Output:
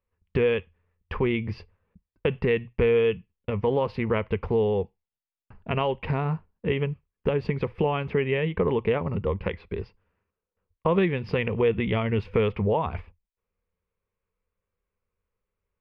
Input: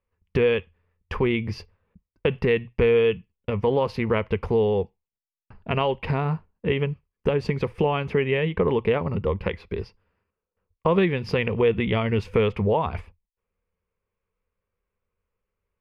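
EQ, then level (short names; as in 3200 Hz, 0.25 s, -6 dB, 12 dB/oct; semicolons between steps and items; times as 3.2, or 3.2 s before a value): air absorption 360 m; high shelf 3700 Hz +11.5 dB; -1.5 dB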